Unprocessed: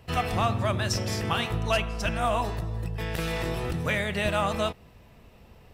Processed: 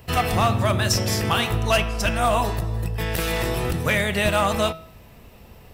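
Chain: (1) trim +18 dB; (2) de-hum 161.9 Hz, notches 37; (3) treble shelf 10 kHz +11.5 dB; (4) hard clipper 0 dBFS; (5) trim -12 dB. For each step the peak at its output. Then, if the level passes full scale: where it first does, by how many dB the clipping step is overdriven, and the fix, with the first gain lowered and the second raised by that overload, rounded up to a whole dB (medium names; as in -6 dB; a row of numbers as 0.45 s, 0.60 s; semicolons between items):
+5.5 dBFS, +5.5 dBFS, +6.0 dBFS, 0.0 dBFS, -12.0 dBFS; step 1, 6.0 dB; step 1 +12 dB, step 5 -6 dB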